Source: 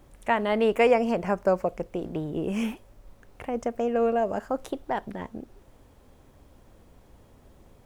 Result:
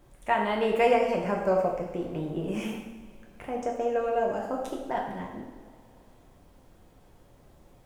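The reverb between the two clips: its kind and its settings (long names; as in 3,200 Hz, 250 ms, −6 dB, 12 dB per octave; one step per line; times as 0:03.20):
coupled-rooms reverb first 0.85 s, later 3.1 s, from −18 dB, DRR −1 dB
level −4.5 dB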